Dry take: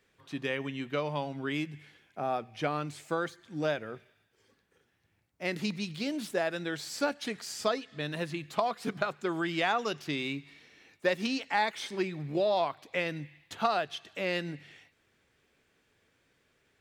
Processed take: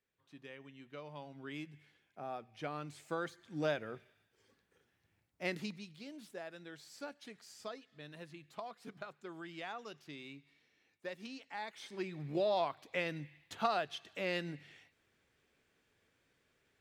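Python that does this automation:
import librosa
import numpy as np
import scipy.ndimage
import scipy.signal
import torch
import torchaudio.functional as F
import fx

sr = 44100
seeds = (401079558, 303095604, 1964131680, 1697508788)

y = fx.gain(x, sr, db=fx.line((0.75, -18.5), (1.6, -11.5), (2.49, -11.5), (3.59, -4.0), (5.47, -4.0), (5.9, -16.0), (11.55, -16.0), (12.28, -5.0)))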